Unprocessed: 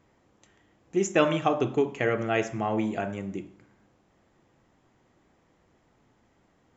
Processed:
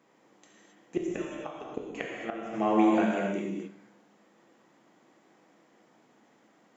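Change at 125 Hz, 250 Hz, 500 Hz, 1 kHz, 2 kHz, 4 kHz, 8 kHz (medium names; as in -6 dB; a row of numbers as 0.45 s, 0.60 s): -8.5 dB, +1.0 dB, -5.0 dB, -2.0 dB, -6.0 dB, -8.0 dB, no reading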